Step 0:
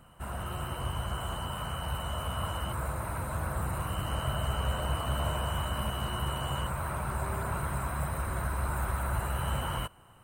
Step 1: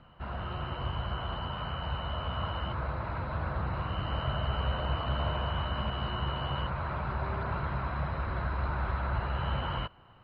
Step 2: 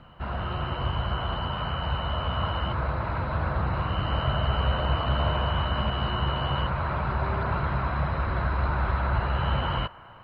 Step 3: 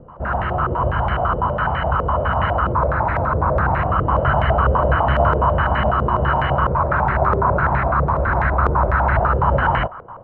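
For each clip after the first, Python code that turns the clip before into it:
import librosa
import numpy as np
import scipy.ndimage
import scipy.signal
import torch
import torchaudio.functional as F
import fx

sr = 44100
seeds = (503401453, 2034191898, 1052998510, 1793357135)

y1 = scipy.signal.sosfilt(scipy.signal.butter(12, 4700.0, 'lowpass', fs=sr, output='sos'), x)
y2 = fx.echo_wet_bandpass(y1, sr, ms=213, feedback_pct=80, hz=1100.0, wet_db=-22)
y2 = y2 * 10.0 ** (6.0 / 20.0)
y3 = fx.filter_held_lowpass(y2, sr, hz=12.0, low_hz=470.0, high_hz=1900.0)
y3 = y3 * 10.0 ** (6.5 / 20.0)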